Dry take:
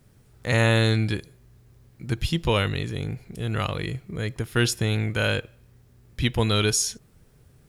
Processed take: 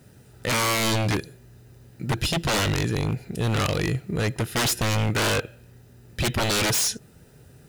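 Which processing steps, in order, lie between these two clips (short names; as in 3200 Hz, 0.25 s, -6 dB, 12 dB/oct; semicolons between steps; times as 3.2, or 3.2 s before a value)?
notch comb 1100 Hz; wavefolder -25.5 dBFS; gain +8 dB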